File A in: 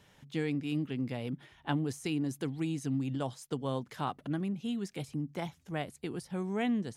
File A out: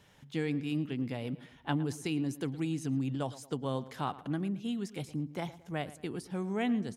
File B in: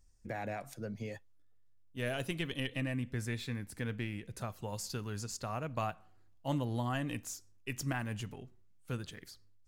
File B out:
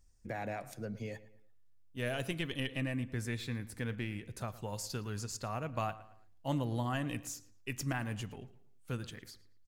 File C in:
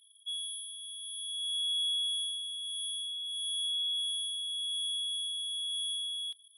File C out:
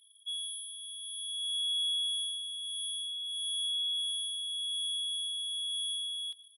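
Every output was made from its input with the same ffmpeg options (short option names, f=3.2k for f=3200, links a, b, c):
-filter_complex "[0:a]asplit=2[a][b];[b]adelay=112,lowpass=f=3.3k:p=1,volume=-16.5dB,asplit=2[c][d];[d]adelay=112,lowpass=f=3.3k:p=1,volume=0.4,asplit=2[e][f];[f]adelay=112,lowpass=f=3.3k:p=1,volume=0.4[g];[a][c][e][g]amix=inputs=4:normalize=0"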